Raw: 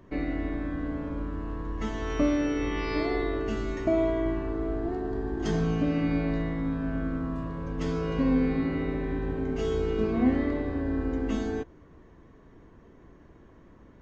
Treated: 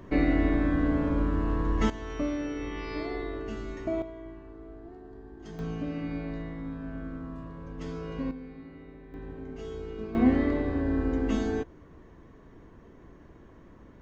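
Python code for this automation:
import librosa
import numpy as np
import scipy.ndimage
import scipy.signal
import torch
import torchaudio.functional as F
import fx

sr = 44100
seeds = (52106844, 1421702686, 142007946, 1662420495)

y = fx.gain(x, sr, db=fx.steps((0.0, 6.5), (1.9, -6.0), (4.02, -15.5), (5.59, -7.5), (8.31, -18.0), (9.14, -10.5), (10.15, 1.5)))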